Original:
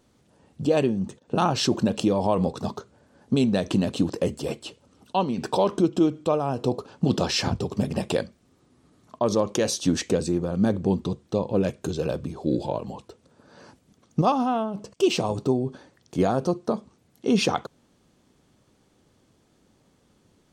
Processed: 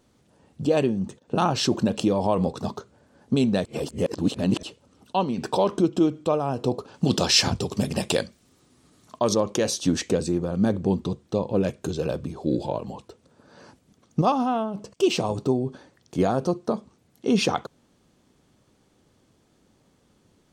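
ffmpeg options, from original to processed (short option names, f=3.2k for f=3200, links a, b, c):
-filter_complex "[0:a]asettb=1/sr,asplit=3[a][b][c];[a]atrim=end=6.944[d];[b]atrim=start=6.94:end=9.34,asetpts=PTS-STARTPTS,afade=t=in:d=0.004:c=qsin,afade=t=out:st=2.396:d=0.004:c=qsin,highshelf=f=2.4k:g=9.5[e];[c]atrim=start=9.336[f];[d][e]acrossfade=d=0.004:c1=hsin:c2=qsin[g];[g][f]acrossfade=d=0.004:c1=qsin:c2=hsin,asplit=3[h][i][j];[h]atrim=end=3.652[k];[i]atrim=start=3.648:end=4.632,asetpts=PTS-STARTPTS,areverse[l];[j]atrim=start=4.628[m];[k][l]acrossfade=d=0.004:c1=hsin:c2=hsin[n];[n][m]acrossfade=d=0.004:c1=hsin:c2=hsin"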